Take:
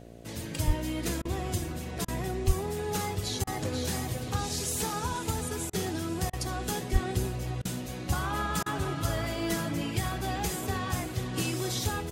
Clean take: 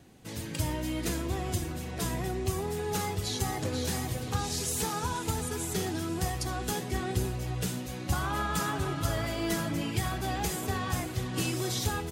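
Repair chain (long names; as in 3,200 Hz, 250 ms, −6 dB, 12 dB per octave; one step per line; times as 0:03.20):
hum removal 57.8 Hz, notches 12
0:00.66–0:00.78: high-pass filter 140 Hz 24 dB per octave
0:02.46–0:02.58: high-pass filter 140 Hz 24 dB per octave
0:06.92–0:07.04: high-pass filter 140 Hz 24 dB per octave
repair the gap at 0:01.22/0:02.05/0:03.44/0:05.70/0:06.30/0:07.62/0:08.63, 30 ms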